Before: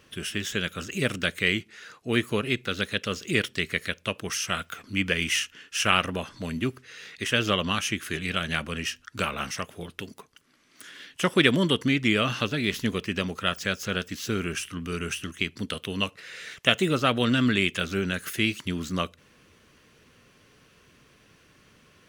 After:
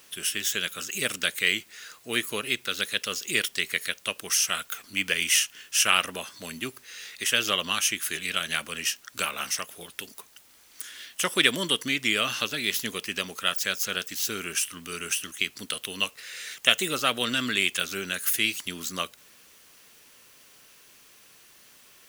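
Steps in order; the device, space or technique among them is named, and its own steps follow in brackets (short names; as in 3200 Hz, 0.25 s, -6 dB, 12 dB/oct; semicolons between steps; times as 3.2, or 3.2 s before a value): turntable without a phono preamp (RIAA curve recording; white noise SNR 28 dB); gain -2.5 dB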